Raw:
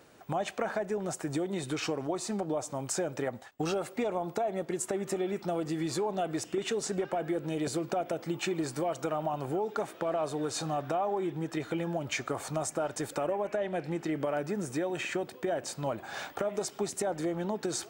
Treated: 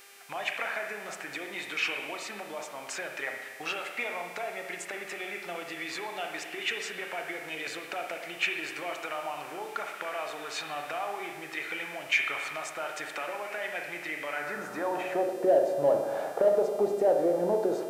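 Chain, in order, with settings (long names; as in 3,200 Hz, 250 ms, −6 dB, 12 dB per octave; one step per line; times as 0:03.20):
spring reverb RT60 1.3 s, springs 34/57 ms, chirp 80 ms, DRR 3 dB
band-pass filter sweep 2,300 Hz → 530 Hz, 0:14.30–0:15.36
in parallel at −10 dB: soft clipping −35.5 dBFS, distortion −9 dB
on the sum: hum with harmonics 400 Hz, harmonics 36, −64 dBFS −1 dB per octave
level +9 dB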